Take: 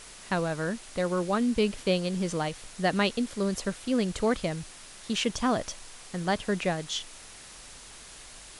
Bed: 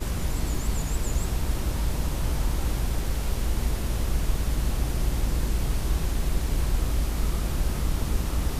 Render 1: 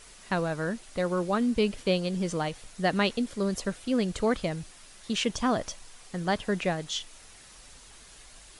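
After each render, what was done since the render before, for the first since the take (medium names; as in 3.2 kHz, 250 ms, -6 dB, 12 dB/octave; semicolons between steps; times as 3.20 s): noise reduction 6 dB, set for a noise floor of -48 dBFS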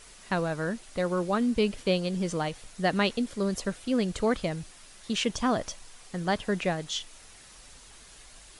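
no audible change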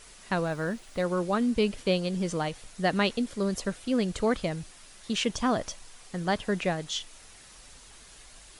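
0.45–1.04 s: median filter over 3 samples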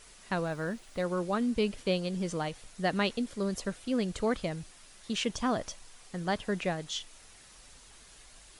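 trim -3.5 dB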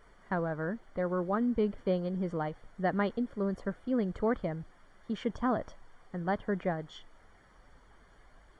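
Savitzky-Golay filter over 41 samples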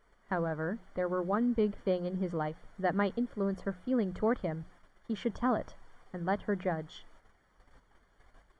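gate -56 dBFS, range -8 dB; hum notches 60/120/180 Hz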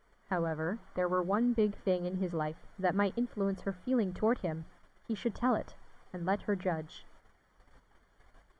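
0.66–1.23 s: peaking EQ 1.1 kHz +6.5 dB 0.78 oct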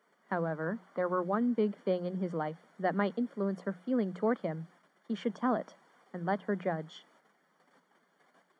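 Chebyshev high-pass 160 Hz, order 6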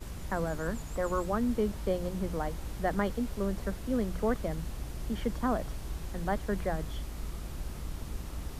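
add bed -12.5 dB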